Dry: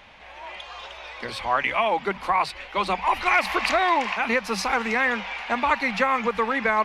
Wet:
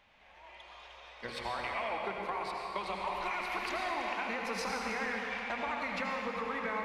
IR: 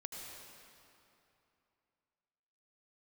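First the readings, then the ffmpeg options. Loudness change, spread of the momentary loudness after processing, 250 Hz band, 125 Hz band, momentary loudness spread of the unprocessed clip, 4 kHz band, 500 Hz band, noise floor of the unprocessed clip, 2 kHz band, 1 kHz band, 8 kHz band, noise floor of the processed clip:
-12.5 dB, 15 LU, -11.5 dB, n/a, 16 LU, -11.5 dB, -12.0 dB, -44 dBFS, -12.5 dB, -13.0 dB, -10.5 dB, -58 dBFS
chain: -filter_complex "[0:a]agate=range=-11dB:threshold=-32dB:ratio=16:detection=peak,acompressor=threshold=-31dB:ratio=6[a];[1:a]atrim=start_sample=2205[b];[a][b]afir=irnorm=-1:irlink=0"

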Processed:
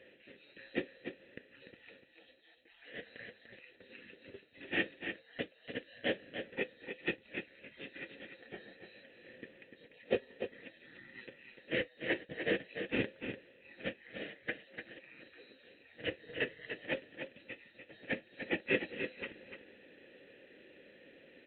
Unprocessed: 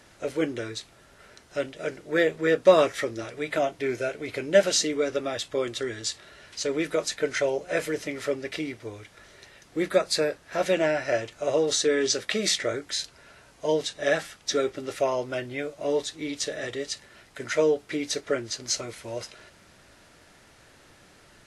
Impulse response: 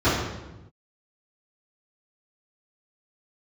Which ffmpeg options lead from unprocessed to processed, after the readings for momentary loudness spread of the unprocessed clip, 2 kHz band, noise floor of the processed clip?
12 LU, -7.5 dB, -64 dBFS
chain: -filter_complex "[0:a]afftfilt=real='real(if(lt(b,736),b+184*(1-2*mod(floor(b/184),2)),b),0)':imag='imag(if(lt(b,736),b+184*(1-2*mod(floor(b/184),2)),b),0)':win_size=2048:overlap=0.75,areverse,acompressor=threshold=-32dB:ratio=8,areverse,asplit=3[a][b][c];[a]bandpass=f=530:t=q:w=8,volume=0dB[d];[b]bandpass=f=1.84k:t=q:w=8,volume=-6dB[e];[c]bandpass=f=2.48k:t=q:w=8,volume=-9dB[f];[d][e][f]amix=inputs=3:normalize=0,lowshelf=f=440:t=q:w=1.5:g=11.5,aecho=1:1:295:0.398,aresample=8000,acrusher=bits=5:mode=log:mix=0:aa=0.000001,aresample=44100,volume=15dB"

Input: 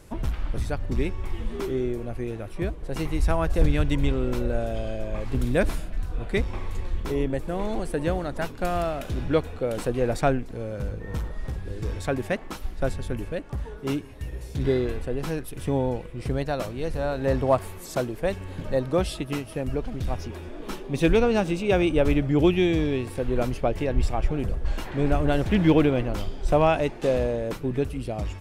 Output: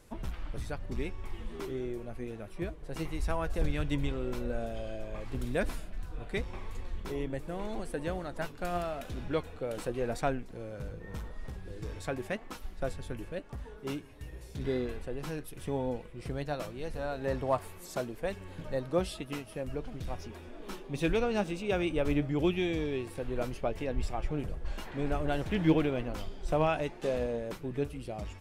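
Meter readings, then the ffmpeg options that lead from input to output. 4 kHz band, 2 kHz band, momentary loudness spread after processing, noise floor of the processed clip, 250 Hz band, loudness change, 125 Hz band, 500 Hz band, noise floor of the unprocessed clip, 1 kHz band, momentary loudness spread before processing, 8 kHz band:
-7.0 dB, -7.0 dB, 13 LU, -48 dBFS, -8.5 dB, -8.5 dB, -10.0 dB, -8.5 dB, -39 dBFS, -7.5 dB, 12 LU, -7.0 dB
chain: -af "lowshelf=f=400:g=-3,flanger=delay=3.8:depth=3.2:regen=71:speed=0.88:shape=triangular,volume=-2.5dB"

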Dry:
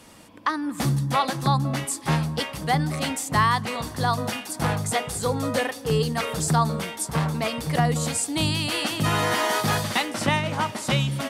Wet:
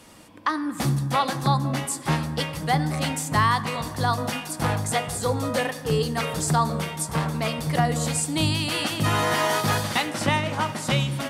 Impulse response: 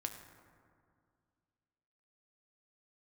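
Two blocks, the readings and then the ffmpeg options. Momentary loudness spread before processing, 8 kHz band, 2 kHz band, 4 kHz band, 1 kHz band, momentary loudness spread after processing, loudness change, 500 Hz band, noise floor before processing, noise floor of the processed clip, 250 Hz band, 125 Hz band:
5 LU, 0.0 dB, 0.0 dB, 0.0 dB, 0.0 dB, 5 LU, 0.0 dB, 0.0 dB, -40 dBFS, -39 dBFS, 0.0 dB, 0.0 dB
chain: -filter_complex "[0:a]asplit=2[a][b];[1:a]atrim=start_sample=2205[c];[b][c]afir=irnorm=-1:irlink=0,volume=-0.5dB[d];[a][d]amix=inputs=2:normalize=0,volume=-5dB"

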